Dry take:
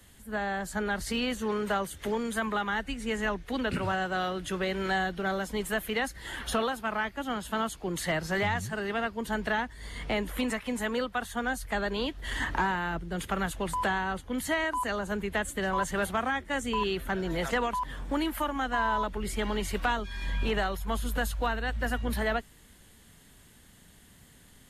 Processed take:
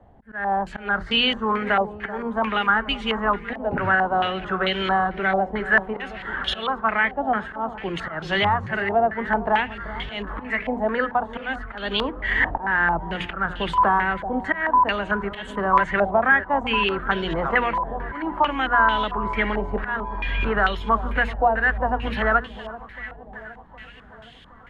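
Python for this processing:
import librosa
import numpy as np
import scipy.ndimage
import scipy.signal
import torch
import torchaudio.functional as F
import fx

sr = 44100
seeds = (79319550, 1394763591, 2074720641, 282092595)

p1 = fx.hum_notches(x, sr, base_hz=60, count=8)
p2 = fx.auto_swell(p1, sr, attack_ms=212.0)
p3 = p2 + fx.echo_alternate(p2, sr, ms=383, hz=1100.0, feedback_pct=72, wet_db=-13, dry=0)
p4 = fx.filter_held_lowpass(p3, sr, hz=4.5, low_hz=750.0, high_hz=3200.0)
y = p4 * librosa.db_to_amplitude(5.0)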